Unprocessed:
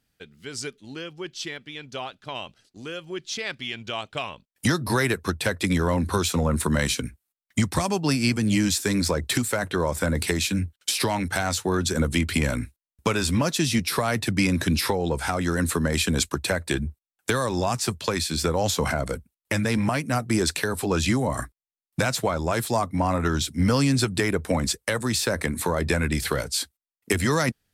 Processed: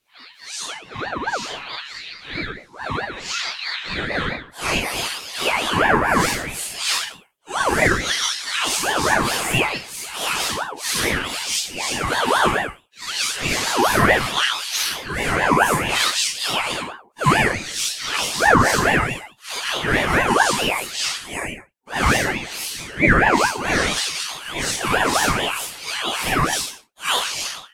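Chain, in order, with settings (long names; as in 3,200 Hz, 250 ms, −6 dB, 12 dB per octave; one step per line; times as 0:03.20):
random phases in long frames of 200 ms
auto-filter high-pass sine 0.63 Hz 310–3,800 Hz
convolution reverb, pre-delay 3 ms, DRR −2 dB
ring modulator whose carrier an LFO sweeps 950 Hz, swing 40%, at 4.6 Hz
level +4.5 dB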